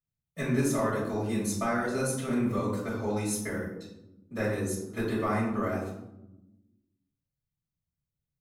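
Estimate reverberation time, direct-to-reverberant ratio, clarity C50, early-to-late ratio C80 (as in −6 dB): 0.95 s, −8.0 dB, 3.0 dB, 6.5 dB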